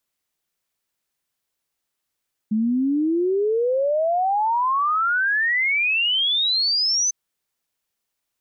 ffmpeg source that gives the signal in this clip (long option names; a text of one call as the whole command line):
ffmpeg -f lavfi -i "aevalsrc='0.133*clip(min(t,4.6-t)/0.01,0,1)*sin(2*PI*210*4.6/log(6200/210)*(exp(log(6200/210)*t/4.6)-1))':duration=4.6:sample_rate=44100" out.wav